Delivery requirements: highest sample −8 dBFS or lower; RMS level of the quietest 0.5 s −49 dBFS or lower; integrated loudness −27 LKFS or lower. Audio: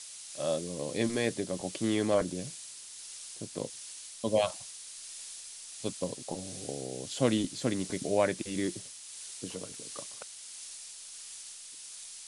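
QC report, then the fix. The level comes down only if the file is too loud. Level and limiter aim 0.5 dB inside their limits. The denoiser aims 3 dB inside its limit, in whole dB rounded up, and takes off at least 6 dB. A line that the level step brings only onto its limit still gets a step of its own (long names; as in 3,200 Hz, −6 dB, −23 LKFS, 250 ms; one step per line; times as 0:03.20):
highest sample −12.0 dBFS: in spec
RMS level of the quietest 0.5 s −47 dBFS: out of spec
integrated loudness −35.0 LKFS: in spec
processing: broadband denoise 6 dB, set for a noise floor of −47 dBFS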